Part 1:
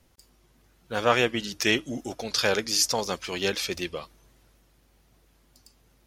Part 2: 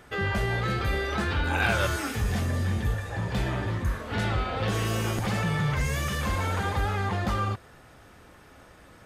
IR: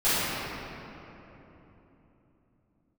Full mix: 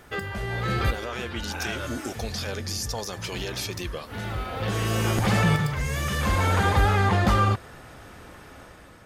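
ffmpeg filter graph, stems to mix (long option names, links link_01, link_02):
-filter_complex "[0:a]highshelf=frequency=7000:gain=8,acompressor=threshold=-42dB:ratio=2,alimiter=level_in=4.5dB:limit=-24dB:level=0:latency=1:release=43,volume=-4.5dB,volume=1.5dB,asplit=2[link_01][link_02];[1:a]volume=1dB[link_03];[link_02]apad=whole_len=399420[link_04];[link_03][link_04]sidechaincompress=threshold=-50dB:ratio=4:attack=5.2:release=1160[link_05];[link_01][link_05]amix=inputs=2:normalize=0,dynaudnorm=framelen=270:gausssize=5:maxgain=6dB"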